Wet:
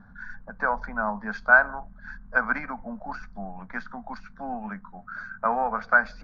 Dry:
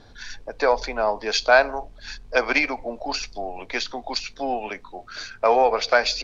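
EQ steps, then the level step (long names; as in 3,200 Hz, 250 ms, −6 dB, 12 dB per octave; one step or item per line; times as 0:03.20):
drawn EQ curve 130 Hz 0 dB, 200 Hz +15 dB, 340 Hz −18 dB, 1,500 Hz +7 dB, 2,700 Hz −26 dB
−2.5 dB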